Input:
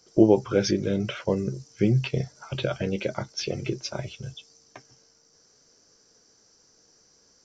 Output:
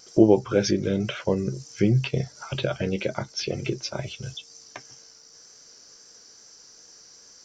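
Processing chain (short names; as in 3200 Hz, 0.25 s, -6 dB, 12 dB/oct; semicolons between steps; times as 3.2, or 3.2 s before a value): wow and flutter 26 cents; mismatched tape noise reduction encoder only; gain +1 dB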